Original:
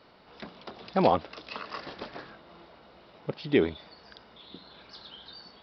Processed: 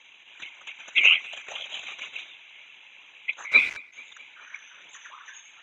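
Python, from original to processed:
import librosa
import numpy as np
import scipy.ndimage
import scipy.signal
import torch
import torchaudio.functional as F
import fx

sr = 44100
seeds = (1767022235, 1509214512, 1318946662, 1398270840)

p1 = fx.band_swap(x, sr, width_hz=2000)
p2 = fx.highpass(p1, sr, hz=1300.0, slope=6)
p3 = fx.peak_eq(p2, sr, hz=2100.0, db=-2.5, octaves=0.21)
p4 = fx.level_steps(p3, sr, step_db=12)
p5 = p3 + (p4 * librosa.db_to_amplitude(1.0))
p6 = fx.whisperise(p5, sr, seeds[0])
p7 = fx.quant_dither(p6, sr, seeds[1], bits=6, dither='none', at=(3.51, 3.92), fade=0.02)
p8 = fx.air_absorb(p7, sr, metres=130.0)
p9 = p8 + fx.echo_tape(p8, sr, ms=214, feedback_pct=75, wet_db=-23.0, lp_hz=4600.0, drive_db=8.0, wow_cents=22, dry=0)
y = p9 * librosa.db_to_amplitude(2.5)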